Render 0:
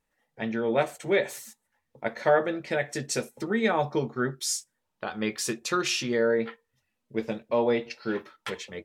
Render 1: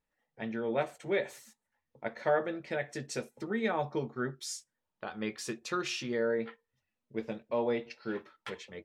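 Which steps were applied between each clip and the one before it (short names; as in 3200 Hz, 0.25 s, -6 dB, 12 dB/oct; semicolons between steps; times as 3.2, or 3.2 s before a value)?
high shelf 7100 Hz -9.5 dB; gain -6.5 dB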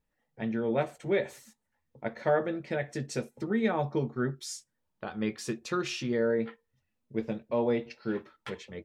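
low shelf 320 Hz +9 dB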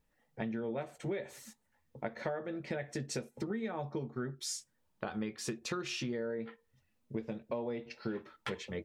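compressor 12:1, threshold -38 dBFS, peak gain reduction 17.5 dB; gain +4 dB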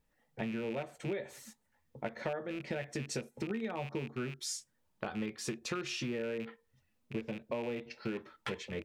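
rattling part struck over -45 dBFS, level -36 dBFS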